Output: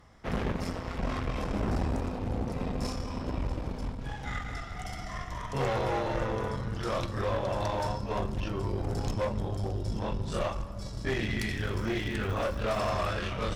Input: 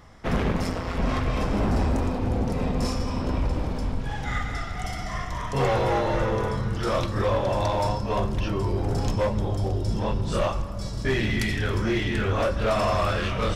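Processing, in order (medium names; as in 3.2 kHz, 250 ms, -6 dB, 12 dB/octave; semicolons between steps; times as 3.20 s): Chebyshev shaper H 2 -12 dB, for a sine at -17 dBFS; 11.53–12.91 s: crackle 140 per s -32 dBFS; trim -7 dB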